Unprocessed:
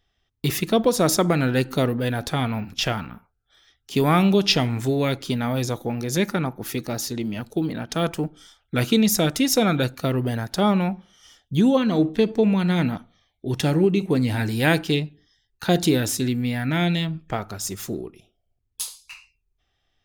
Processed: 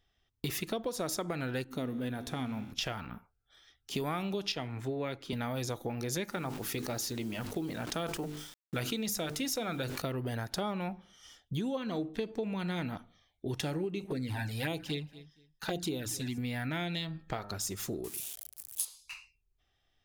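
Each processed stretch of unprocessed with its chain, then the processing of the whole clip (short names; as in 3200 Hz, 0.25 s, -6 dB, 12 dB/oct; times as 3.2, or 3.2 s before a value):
1.64–2.72 bell 240 Hz +10 dB 0.71 oct + notch 4700 Hz, Q 10 + resonator 63 Hz, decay 1.8 s
4.52–5.33 tone controls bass -2 dB, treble -9 dB + three-band expander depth 70%
6.32–10.02 notches 50/100/150/200/250/300/350/400/450 Hz + requantised 8-bit, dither none + sustainer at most 79 dB/s
14.04–16.38 notches 60/120/180 Hz + envelope flanger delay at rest 7.1 ms, full sweep at -15 dBFS + feedback echo 0.233 s, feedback 20%, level -24 dB
16.96–17.52 bell 4200 Hz +10 dB 0.29 oct + de-hum 101.9 Hz, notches 18
18.04–18.85 switching spikes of -30.5 dBFS + HPF 43 Hz + bell 11000 Hz +9.5 dB 1.3 oct
whole clip: dynamic EQ 190 Hz, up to -5 dB, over -34 dBFS, Q 0.96; compressor, threshold -28 dBFS; gain -4 dB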